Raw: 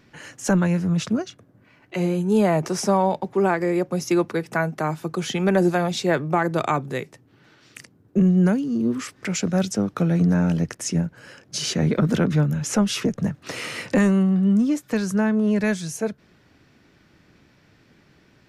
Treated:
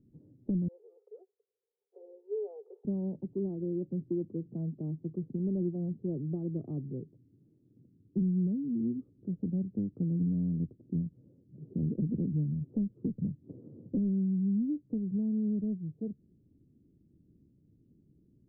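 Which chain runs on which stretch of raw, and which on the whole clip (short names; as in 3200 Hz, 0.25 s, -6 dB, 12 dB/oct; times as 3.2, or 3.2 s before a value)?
0.68–2.85 G.711 law mismatch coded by A + Chebyshev high-pass 410 Hz, order 8 + comb 2.4 ms, depth 92%
whole clip: inverse Chebyshev low-pass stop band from 2000 Hz, stop band 80 dB; compressor 2:1, threshold -25 dBFS; gain -6 dB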